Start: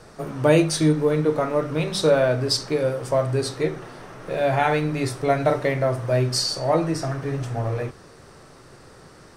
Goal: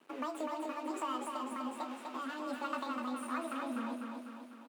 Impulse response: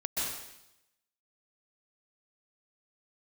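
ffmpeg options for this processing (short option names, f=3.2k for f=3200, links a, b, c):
-filter_complex "[0:a]highshelf=f=5.8k:g=-11.5,asplit=2[a][b];[b]adelay=24,volume=-11dB[c];[a][c]amix=inputs=2:normalize=0,acompressor=threshold=-26dB:ratio=6,equalizer=f=400:t=o:w=0.67:g=-6,equalizer=f=1k:t=o:w=0.67:g=-4,equalizer=f=2.5k:t=o:w=0.67:g=-11,equalizer=f=6.3k:t=o:w=0.67:g=-7,acrossover=split=4200[d][e];[e]acompressor=threshold=-54dB:ratio=4:attack=1:release=60[f];[d][f]amix=inputs=2:normalize=0,asetrate=88200,aresample=44100,acrossover=split=440[g][h];[g]aeval=exprs='val(0)*(1-0.5/2+0.5/2*cos(2*PI*1.3*n/s))':c=same[i];[h]aeval=exprs='val(0)*(1-0.5/2-0.5/2*cos(2*PI*1.3*n/s))':c=same[j];[i][j]amix=inputs=2:normalize=0,aeval=exprs='sgn(val(0))*max(abs(val(0))-0.00282,0)':c=same,highpass=f=230:w=0.5412,highpass=f=230:w=1.3066,bandreject=f=3.4k:w=28,aecho=1:1:249|498|747|996|1245|1494|1743:0.596|0.328|0.18|0.0991|0.0545|0.03|0.0165,volume=-5dB"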